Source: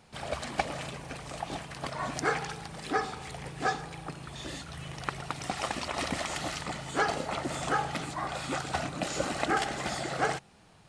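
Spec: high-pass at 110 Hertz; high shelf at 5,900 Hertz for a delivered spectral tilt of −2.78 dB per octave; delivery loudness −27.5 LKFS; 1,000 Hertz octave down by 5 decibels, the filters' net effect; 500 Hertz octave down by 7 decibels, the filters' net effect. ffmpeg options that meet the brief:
ffmpeg -i in.wav -af "highpass=110,equalizer=frequency=500:width_type=o:gain=-8,equalizer=frequency=1000:width_type=o:gain=-4,highshelf=frequency=5900:gain=3,volume=8.5dB" out.wav

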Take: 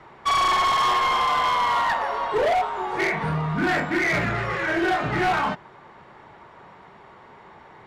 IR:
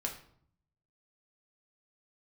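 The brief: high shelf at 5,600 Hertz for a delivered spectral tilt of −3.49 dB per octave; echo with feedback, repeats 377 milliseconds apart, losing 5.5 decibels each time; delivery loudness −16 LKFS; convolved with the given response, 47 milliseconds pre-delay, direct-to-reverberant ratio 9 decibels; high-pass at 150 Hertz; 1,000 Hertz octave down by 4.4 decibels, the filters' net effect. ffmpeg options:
-filter_complex "[0:a]highpass=150,equalizer=frequency=1000:width_type=o:gain=-5.5,highshelf=frequency=5600:gain=7,aecho=1:1:377|754|1131|1508|1885|2262|2639:0.531|0.281|0.149|0.079|0.0419|0.0222|0.0118,asplit=2[link_01][link_02];[1:a]atrim=start_sample=2205,adelay=47[link_03];[link_02][link_03]afir=irnorm=-1:irlink=0,volume=-10.5dB[link_04];[link_01][link_04]amix=inputs=2:normalize=0,volume=7dB"

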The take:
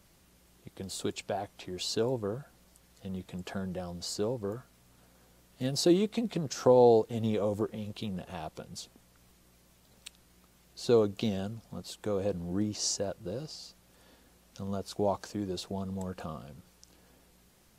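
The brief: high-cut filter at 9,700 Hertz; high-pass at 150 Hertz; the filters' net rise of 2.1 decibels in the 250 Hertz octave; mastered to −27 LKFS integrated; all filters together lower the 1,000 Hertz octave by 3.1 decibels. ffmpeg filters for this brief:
ffmpeg -i in.wav -af "highpass=150,lowpass=9700,equalizer=frequency=250:width_type=o:gain=4,equalizer=frequency=1000:width_type=o:gain=-5,volume=4dB" out.wav

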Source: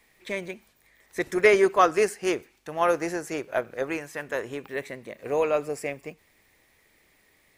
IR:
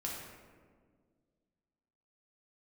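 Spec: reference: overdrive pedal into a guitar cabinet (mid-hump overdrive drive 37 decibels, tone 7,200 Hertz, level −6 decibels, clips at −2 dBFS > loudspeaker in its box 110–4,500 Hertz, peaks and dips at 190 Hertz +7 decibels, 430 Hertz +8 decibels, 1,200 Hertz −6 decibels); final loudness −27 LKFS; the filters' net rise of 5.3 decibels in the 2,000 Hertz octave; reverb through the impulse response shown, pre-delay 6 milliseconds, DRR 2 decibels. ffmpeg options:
-filter_complex "[0:a]equalizer=frequency=2000:width_type=o:gain=6.5,asplit=2[link_01][link_02];[1:a]atrim=start_sample=2205,adelay=6[link_03];[link_02][link_03]afir=irnorm=-1:irlink=0,volume=-3.5dB[link_04];[link_01][link_04]amix=inputs=2:normalize=0,asplit=2[link_05][link_06];[link_06]highpass=frequency=720:poles=1,volume=37dB,asoftclip=type=tanh:threshold=-2dB[link_07];[link_05][link_07]amix=inputs=2:normalize=0,lowpass=frequency=7200:poles=1,volume=-6dB,highpass=110,equalizer=frequency=190:width_type=q:width=4:gain=7,equalizer=frequency=430:width_type=q:width=4:gain=8,equalizer=frequency=1200:width_type=q:width=4:gain=-6,lowpass=frequency=4500:width=0.5412,lowpass=frequency=4500:width=1.3066,volume=-19dB"

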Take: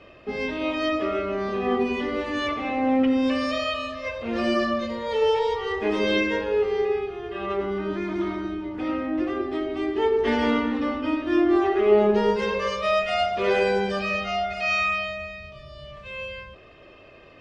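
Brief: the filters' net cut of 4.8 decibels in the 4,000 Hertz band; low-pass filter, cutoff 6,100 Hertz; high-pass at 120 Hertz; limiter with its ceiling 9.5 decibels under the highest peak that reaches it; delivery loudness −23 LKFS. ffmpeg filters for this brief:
ffmpeg -i in.wav -af "highpass=120,lowpass=6100,equalizer=frequency=4000:width_type=o:gain=-6.5,volume=3.5dB,alimiter=limit=-13dB:level=0:latency=1" out.wav

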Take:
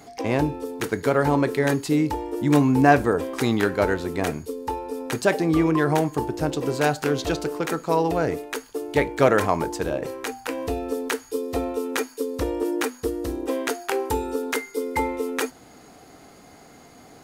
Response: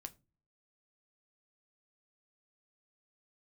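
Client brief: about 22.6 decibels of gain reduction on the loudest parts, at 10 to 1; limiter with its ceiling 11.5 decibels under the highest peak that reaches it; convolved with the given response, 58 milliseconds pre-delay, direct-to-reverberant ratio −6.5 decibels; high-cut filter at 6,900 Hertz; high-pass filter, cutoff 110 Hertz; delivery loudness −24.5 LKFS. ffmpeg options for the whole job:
-filter_complex "[0:a]highpass=110,lowpass=6900,acompressor=threshold=-34dB:ratio=10,alimiter=level_in=7dB:limit=-24dB:level=0:latency=1,volume=-7dB,asplit=2[link_01][link_02];[1:a]atrim=start_sample=2205,adelay=58[link_03];[link_02][link_03]afir=irnorm=-1:irlink=0,volume=11.5dB[link_04];[link_01][link_04]amix=inputs=2:normalize=0,volume=9.5dB"

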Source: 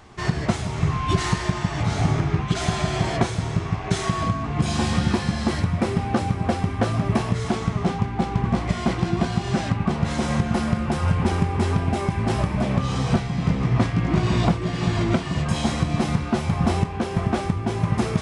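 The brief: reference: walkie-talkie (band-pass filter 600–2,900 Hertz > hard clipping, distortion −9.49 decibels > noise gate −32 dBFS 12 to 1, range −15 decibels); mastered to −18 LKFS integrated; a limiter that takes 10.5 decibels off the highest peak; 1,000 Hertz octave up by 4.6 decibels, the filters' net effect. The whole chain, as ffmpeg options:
ffmpeg -i in.wav -af "equalizer=frequency=1000:width_type=o:gain=7,alimiter=limit=-14.5dB:level=0:latency=1,highpass=600,lowpass=2900,asoftclip=type=hard:threshold=-29dB,agate=range=-15dB:threshold=-32dB:ratio=12,volume=14.5dB" out.wav

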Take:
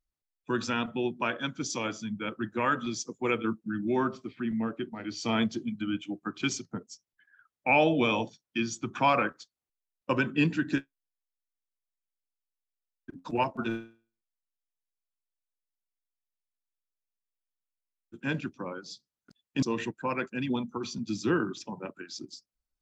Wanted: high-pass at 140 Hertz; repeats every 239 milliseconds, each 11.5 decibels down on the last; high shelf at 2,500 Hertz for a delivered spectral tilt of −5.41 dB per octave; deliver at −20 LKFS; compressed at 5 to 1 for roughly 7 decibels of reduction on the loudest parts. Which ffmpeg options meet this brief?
ffmpeg -i in.wav -af "highpass=140,highshelf=frequency=2500:gain=-8,acompressor=threshold=-28dB:ratio=5,aecho=1:1:239|478|717:0.266|0.0718|0.0194,volume=15dB" out.wav

